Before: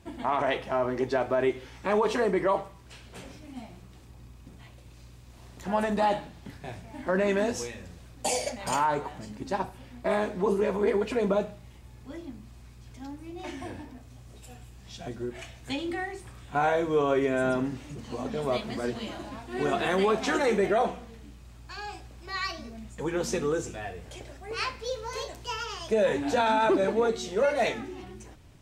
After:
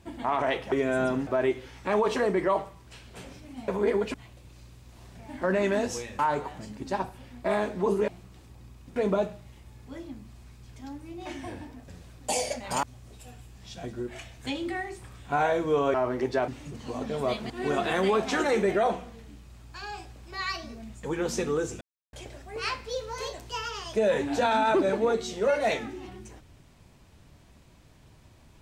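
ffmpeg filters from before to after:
-filter_complex "[0:a]asplit=16[s0][s1][s2][s3][s4][s5][s6][s7][s8][s9][s10][s11][s12][s13][s14][s15];[s0]atrim=end=0.722[s16];[s1]atrim=start=17.168:end=17.722[s17];[s2]atrim=start=1.258:end=3.672[s18];[s3]atrim=start=10.678:end=11.142[s19];[s4]atrim=start=4.548:end=5.562[s20];[s5]atrim=start=6.798:end=7.842[s21];[s6]atrim=start=8.788:end=10.682[s22];[s7]atrim=start=3.668:end=4.552[s23];[s8]atrim=start=11.138:end=14.062[s24];[s9]atrim=start=7.838:end=8.792[s25];[s10]atrim=start=14.058:end=17.172[s26];[s11]atrim=start=0.718:end=1.262[s27];[s12]atrim=start=17.718:end=18.742[s28];[s13]atrim=start=19.448:end=23.76,asetpts=PTS-STARTPTS,afade=t=out:st=4.308:d=0.004:c=hsin[s29];[s14]atrim=start=23.76:end=24.08,asetpts=PTS-STARTPTS,volume=0[s30];[s15]atrim=start=24.08,asetpts=PTS-STARTPTS,afade=t=in:d=0.004:c=hsin[s31];[s16][s17]acrossfade=d=0.004:c1=hsin:c2=hsin[s32];[s32][s18]acrossfade=d=0.004:c1=hsin:c2=hsin[s33];[s33][s19]acrossfade=d=0.004:c1=hsin:c2=hsin[s34];[s34][s20]acrossfade=d=0.004:c1=hsin:c2=hsin[s35];[s35][s21]acrossfade=d=0.004:c1=hsin:c2=hsin[s36];[s36][s22]acrossfade=d=0.004:c1=hsin:c2=hsin[s37];[s37][s23]acrossfade=d=0.004:c1=hsin:c2=hsin[s38];[s38][s24]acrossfade=d=0.004:c1=hsin:c2=hsin[s39];[s39][s25]acrossfade=d=0.004:c1=hsin:c2=hsin[s40];[s40][s26]acrossfade=d=0.004:c1=hsin:c2=hsin[s41];[s41][s27]acrossfade=d=0.004:c1=hsin:c2=hsin[s42];[s42][s28]acrossfade=d=0.004:c1=hsin:c2=hsin[s43];[s29][s30][s31]concat=n=3:v=0:a=1[s44];[s43][s44]acrossfade=d=0.004:c1=hsin:c2=hsin"

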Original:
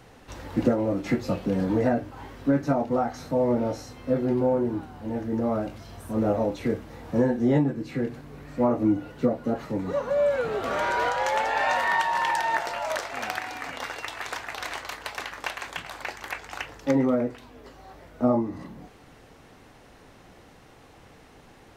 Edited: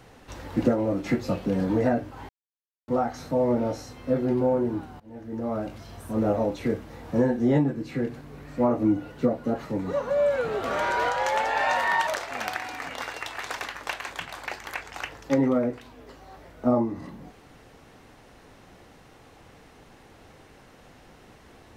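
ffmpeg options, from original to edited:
-filter_complex "[0:a]asplit=6[s0][s1][s2][s3][s4][s5];[s0]atrim=end=2.29,asetpts=PTS-STARTPTS,afade=t=out:st=2.286:d=0.004:c=hsin[s6];[s1]atrim=start=2.29:end=2.88,asetpts=PTS-STARTPTS,volume=0[s7];[s2]atrim=start=2.88:end=5,asetpts=PTS-STARTPTS,afade=t=in:d=0.004:c=hsin,afade=t=out:st=2.116:d=0.004:c=hsin:silence=0.0794328[s8];[s3]atrim=start=5:end=12.072,asetpts=PTS-STARTPTS,afade=t=in:d=0.77:silence=0.0794328[s9];[s4]atrim=start=12.888:end=14.402[s10];[s5]atrim=start=15.148[s11];[s6][s7][s8][s9]concat=n=4:v=0:a=1[s12];[s12][s10]acrossfade=d=0.004:c1=hsin:c2=hsin[s13];[s13][s11]acrossfade=d=0.004:c1=hsin:c2=hsin"

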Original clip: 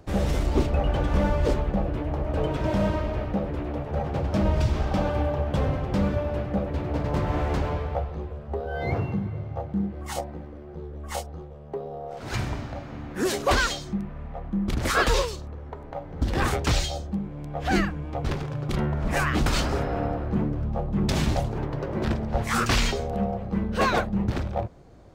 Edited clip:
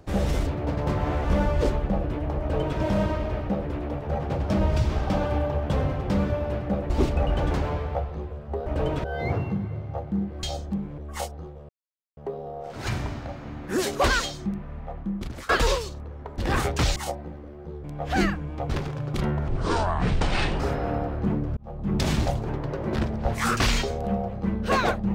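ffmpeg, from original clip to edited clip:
-filter_complex "[0:a]asplit=17[s0][s1][s2][s3][s4][s5][s6][s7][s8][s9][s10][s11][s12][s13][s14][s15][s16];[s0]atrim=end=0.472[s17];[s1]atrim=start=6.738:end=7.512[s18];[s2]atrim=start=1.078:end=6.742[s19];[s3]atrim=start=0.468:end=1.082[s20];[s4]atrim=start=7.508:end=8.662[s21];[s5]atrim=start=2.238:end=2.622[s22];[s6]atrim=start=8.658:end=10.052[s23];[s7]atrim=start=16.838:end=17.392[s24];[s8]atrim=start=10.928:end=11.64,asetpts=PTS-STARTPTS,afade=t=out:st=0.708:d=0.004:c=hsin,apad=pad_dur=0.48[s25];[s9]atrim=start=11.64:end=14.96,asetpts=PTS-STARTPTS,afade=t=in:d=0.004:c=hsin,afade=t=out:st=2.75:d=0.57:silence=0.0749894[s26];[s10]atrim=start=14.96:end=15.852,asetpts=PTS-STARTPTS,afade=t=in:d=0.004:c=hsin:silence=0.0749894[s27];[s11]atrim=start=16.258:end=16.842[s28];[s12]atrim=start=10.048:end=10.932[s29];[s13]atrim=start=17.388:end=19.034[s30];[s14]atrim=start=19.03:end=19.69,asetpts=PTS-STARTPTS,asetrate=26019,aresample=44100,atrim=end_sample=49332,asetpts=PTS-STARTPTS[s31];[s15]atrim=start=19.686:end=20.66,asetpts=PTS-STARTPTS,afade=t=out:st=0.97:d=0.004:c=hsin[s32];[s16]atrim=start=20.66,asetpts=PTS-STARTPTS,afade=t=in:d=0.4[s33];[s17][s18]acrossfade=d=0.004:c1=hsin:c2=hsin[s34];[s34][s19]acrossfade=d=0.004:c1=hsin:c2=hsin[s35];[s35][s20]acrossfade=d=0.004:c1=hsin:c2=hsin[s36];[s36][s21]acrossfade=d=0.004:c1=hsin:c2=hsin[s37];[s37][s22]acrossfade=d=0.004:c1=hsin:c2=hsin[s38];[s38][s23]acrossfade=d=0.004:c1=hsin:c2=hsin[s39];[s39][s24]acrossfade=d=0.004:c1=hsin:c2=hsin[s40];[s25][s26][s27]concat=n=3:v=0:a=1[s41];[s40][s41]acrossfade=d=0.004:c1=hsin:c2=hsin[s42];[s42][s28]acrossfade=d=0.004:c1=hsin:c2=hsin[s43];[s43][s29]acrossfade=d=0.004:c1=hsin:c2=hsin[s44];[s44][s30]acrossfade=d=0.004:c1=hsin:c2=hsin[s45];[s45][s31]acrossfade=d=0.004:c1=hsin:c2=hsin[s46];[s32][s33]concat=n=2:v=0:a=1[s47];[s46][s47]acrossfade=d=0.004:c1=hsin:c2=hsin"

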